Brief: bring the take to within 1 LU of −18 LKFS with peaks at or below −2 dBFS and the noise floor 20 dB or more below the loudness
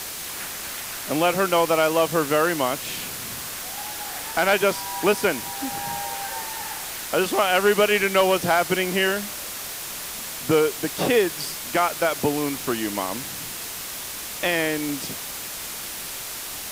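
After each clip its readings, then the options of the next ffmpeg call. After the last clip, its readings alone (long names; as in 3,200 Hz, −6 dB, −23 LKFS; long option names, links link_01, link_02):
background noise floor −34 dBFS; target noise floor −44 dBFS; integrated loudness −23.5 LKFS; sample peak −8.0 dBFS; target loudness −18.0 LKFS
→ -af "afftdn=noise_reduction=10:noise_floor=-34"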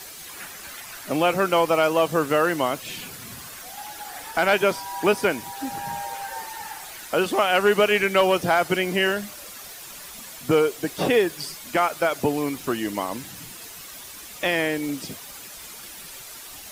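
background noise floor −41 dBFS; target noise floor −43 dBFS
→ -af "afftdn=noise_reduction=6:noise_floor=-41"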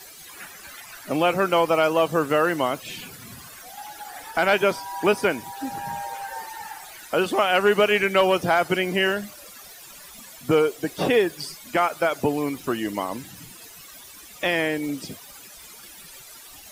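background noise floor −45 dBFS; integrated loudness −23.0 LKFS; sample peak −8.5 dBFS; target loudness −18.0 LKFS
→ -af "volume=5dB"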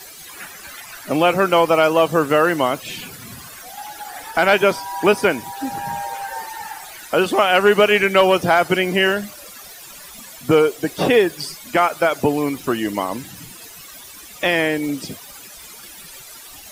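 integrated loudness −18.0 LKFS; sample peak −3.5 dBFS; background noise floor −40 dBFS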